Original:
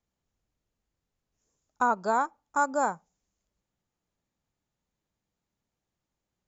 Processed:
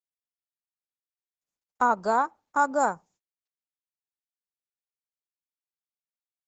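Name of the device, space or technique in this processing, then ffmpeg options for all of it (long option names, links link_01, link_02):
video call: -filter_complex "[0:a]asplit=3[link_01][link_02][link_03];[link_01]afade=type=out:start_time=2.14:duration=0.02[link_04];[link_02]lowpass=6600,afade=type=in:start_time=2.14:duration=0.02,afade=type=out:start_time=2.77:duration=0.02[link_05];[link_03]afade=type=in:start_time=2.77:duration=0.02[link_06];[link_04][link_05][link_06]amix=inputs=3:normalize=0,highpass=130,dynaudnorm=framelen=260:gausssize=9:maxgain=10dB,agate=range=-25dB:threshold=-51dB:ratio=16:detection=peak,volume=-6.5dB" -ar 48000 -c:a libopus -b:a 12k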